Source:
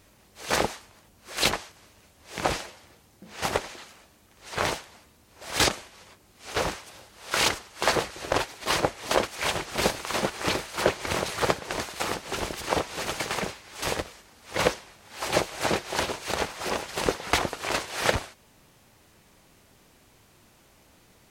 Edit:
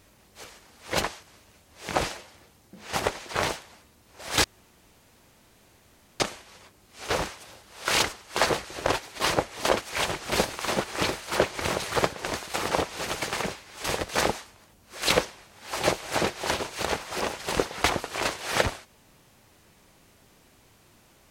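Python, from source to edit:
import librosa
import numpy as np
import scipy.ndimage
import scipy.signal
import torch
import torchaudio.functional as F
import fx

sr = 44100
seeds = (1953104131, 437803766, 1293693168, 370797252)

y = fx.edit(x, sr, fx.swap(start_s=0.44, length_s=1.03, other_s=14.07, other_length_s=0.54),
    fx.cut(start_s=3.78, length_s=0.73),
    fx.insert_room_tone(at_s=5.66, length_s=1.76),
    fx.cut(start_s=12.17, length_s=0.52), tone=tone)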